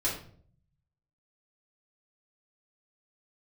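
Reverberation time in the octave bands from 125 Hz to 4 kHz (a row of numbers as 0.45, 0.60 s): 1.2, 0.85, 0.60, 0.45, 0.40, 0.35 s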